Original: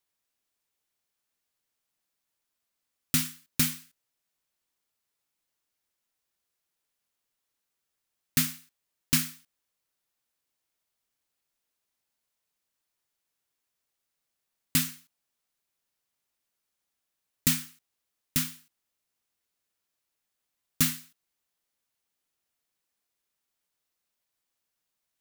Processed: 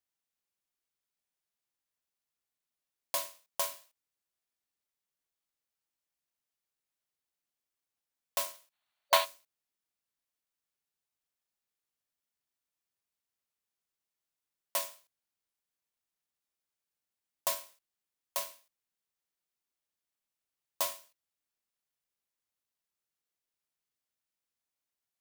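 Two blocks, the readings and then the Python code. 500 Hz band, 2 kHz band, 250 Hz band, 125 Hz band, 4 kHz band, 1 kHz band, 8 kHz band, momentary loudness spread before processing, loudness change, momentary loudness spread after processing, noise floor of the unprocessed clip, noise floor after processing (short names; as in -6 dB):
+15.5 dB, -4.5 dB, under -30 dB, under -35 dB, -4.0 dB, +12.0 dB, -8.0 dB, 11 LU, -6.0 dB, 13 LU, -84 dBFS, under -85 dBFS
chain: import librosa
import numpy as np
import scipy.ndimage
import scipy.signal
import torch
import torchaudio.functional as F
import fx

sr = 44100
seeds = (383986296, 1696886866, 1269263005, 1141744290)

y = x * np.sin(2.0 * np.pi * 820.0 * np.arange(len(x)) / sr)
y = fx.spec_box(y, sr, start_s=8.72, length_s=0.53, low_hz=570.0, high_hz=4600.0, gain_db=12)
y = y * 10.0 ** (-5.0 / 20.0)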